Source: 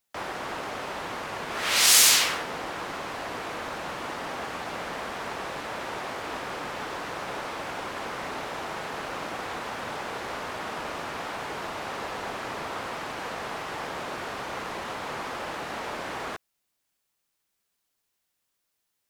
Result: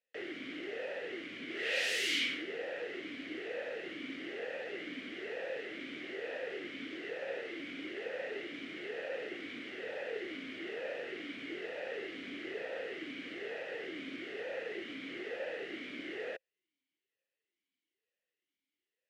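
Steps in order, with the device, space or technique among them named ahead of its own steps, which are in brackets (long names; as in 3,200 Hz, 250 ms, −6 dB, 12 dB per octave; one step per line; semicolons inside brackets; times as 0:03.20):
talk box (tube saturation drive 19 dB, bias 0.45; formant filter swept between two vowels e-i 1.1 Hz)
level +7 dB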